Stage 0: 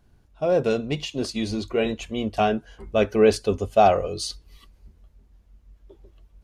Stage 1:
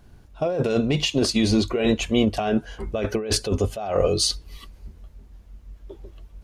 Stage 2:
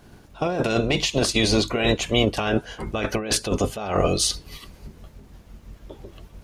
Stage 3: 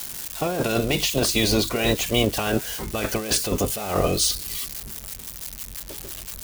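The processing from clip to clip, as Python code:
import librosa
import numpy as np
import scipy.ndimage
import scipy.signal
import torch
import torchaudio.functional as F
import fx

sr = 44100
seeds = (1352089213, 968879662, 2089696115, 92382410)

y1 = fx.over_compress(x, sr, threshold_db=-26.0, ratio=-1.0)
y1 = y1 * 10.0 ** (4.5 / 20.0)
y2 = fx.spec_clip(y1, sr, under_db=14)
y3 = y2 + 0.5 * 10.0 ** (-21.0 / 20.0) * np.diff(np.sign(y2), prepend=np.sign(y2[:1]))
y3 = y3 * 10.0 ** (-1.0 / 20.0)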